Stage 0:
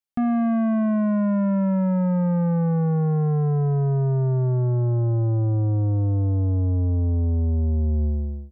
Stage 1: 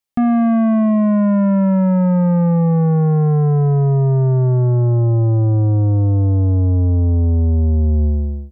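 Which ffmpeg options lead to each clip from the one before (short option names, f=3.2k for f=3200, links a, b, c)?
-af "bandreject=f=1.5k:w=12,volume=7dB"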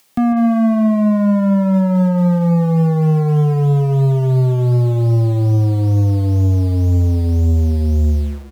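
-filter_complex "[0:a]aecho=1:1:146:0.211,acrossover=split=100[a][b];[a]acrusher=bits=6:mix=0:aa=0.000001[c];[b]acompressor=mode=upward:threshold=-34dB:ratio=2.5[d];[c][d]amix=inputs=2:normalize=0"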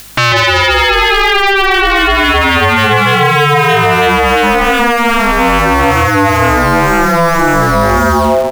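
-af "aeval=exprs='0.501*sin(PI/2*8.91*val(0)/0.501)':c=same,aeval=exprs='val(0)*sin(2*PI*590*n/s)':c=same,aeval=exprs='val(0)+0.00562*(sin(2*PI*50*n/s)+sin(2*PI*2*50*n/s)/2+sin(2*PI*3*50*n/s)/3+sin(2*PI*4*50*n/s)/4+sin(2*PI*5*50*n/s)/5)':c=same,volume=2.5dB"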